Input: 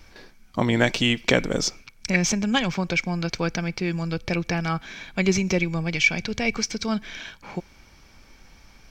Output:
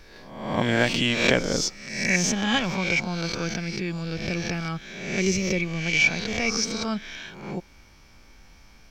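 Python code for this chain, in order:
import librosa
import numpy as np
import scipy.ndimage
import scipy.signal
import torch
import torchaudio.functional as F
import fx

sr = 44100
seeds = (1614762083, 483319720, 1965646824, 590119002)

y = fx.spec_swells(x, sr, rise_s=0.82)
y = fx.dynamic_eq(y, sr, hz=950.0, q=0.98, threshold_db=-39.0, ratio=4.0, max_db=-7, at=(3.25, 5.86))
y = F.gain(torch.from_numpy(y), -3.5).numpy()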